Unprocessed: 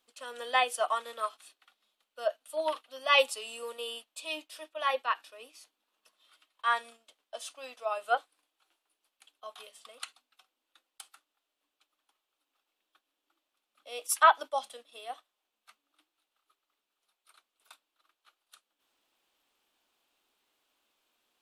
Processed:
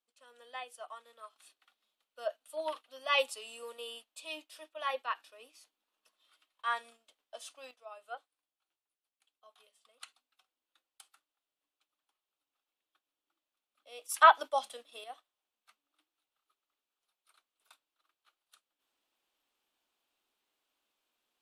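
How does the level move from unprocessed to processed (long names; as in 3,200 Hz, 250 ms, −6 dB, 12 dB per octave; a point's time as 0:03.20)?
−17 dB
from 0:01.36 −5.5 dB
from 0:07.71 −16 dB
from 0:10.01 −8.5 dB
from 0:14.14 +0.5 dB
from 0:15.04 −6.5 dB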